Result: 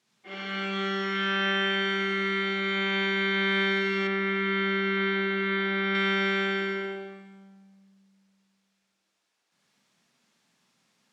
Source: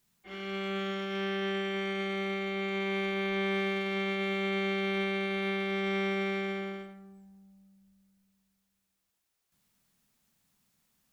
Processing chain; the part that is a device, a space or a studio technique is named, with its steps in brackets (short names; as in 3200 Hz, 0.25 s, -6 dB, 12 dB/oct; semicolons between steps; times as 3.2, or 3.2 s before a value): supermarket ceiling speaker (BPF 230–5700 Hz; reverb RT60 1.2 s, pre-delay 37 ms, DRR -2.5 dB); 4.07–5.95 Bessel low-pass 2800 Hz, order 2; gain +4.5 dB